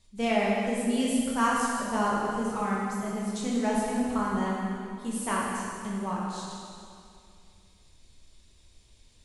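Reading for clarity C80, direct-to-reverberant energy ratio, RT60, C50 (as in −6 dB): 0.0 dB, −5.5 dB, 2.4 s, −1.5 dB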